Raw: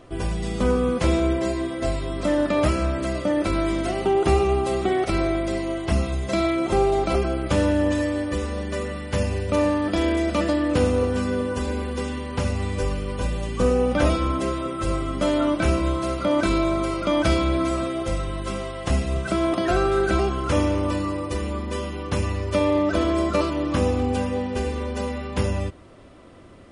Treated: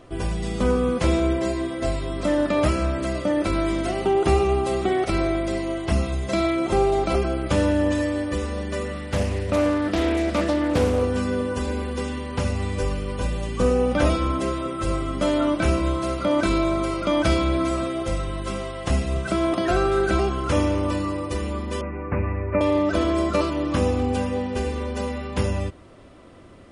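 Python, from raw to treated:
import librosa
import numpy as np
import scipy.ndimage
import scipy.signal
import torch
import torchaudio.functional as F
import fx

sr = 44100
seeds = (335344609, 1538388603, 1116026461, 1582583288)

y = fx.doppler_dist(x, sr, depth_ms=0.37, at=(8.92, 11.02))
y = fx.steep_lowpass(y, sr, hz=2500.0, slope=96, at=(21.81, 22.61))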